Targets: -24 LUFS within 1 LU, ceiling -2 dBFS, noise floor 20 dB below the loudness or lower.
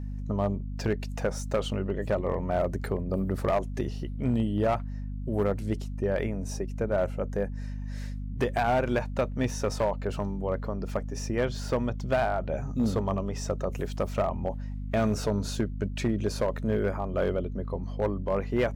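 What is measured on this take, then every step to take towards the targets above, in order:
clipped 0.8%; flat tops at -19.0 dBFS; hum 50 Hz; harmonics up to 250 Hz; hum level -32 dBFS; loudness -30.0 LUFS; peak -19.0 dBFS; loudness target -24.0 LUFS
-> clip repair -19 dBFS; de-hum 50 Hz, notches 5; gain +6 dB

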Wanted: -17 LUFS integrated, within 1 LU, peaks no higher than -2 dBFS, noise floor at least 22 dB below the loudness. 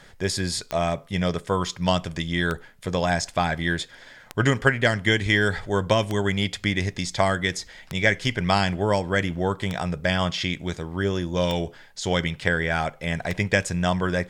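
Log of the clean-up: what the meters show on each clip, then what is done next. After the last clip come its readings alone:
clicks 8; loudness -24.5 LUFS; peak -4.5 dBFS; loudness target -17.0 LUFS
-> de-click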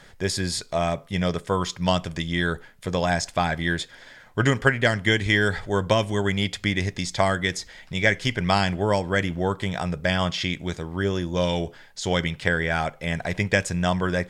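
clicks 0; loudness -24.5 LUFS; peak -4.5 dBFS; loudness target -17.0 LUFS
-> gain +7.5 dB; limiter -2 dBFS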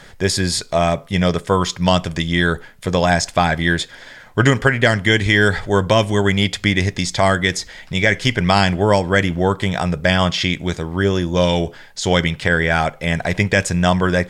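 loudness -17.5 LUFS; peak -2.0 dBFS; noise floor -43 dBFS

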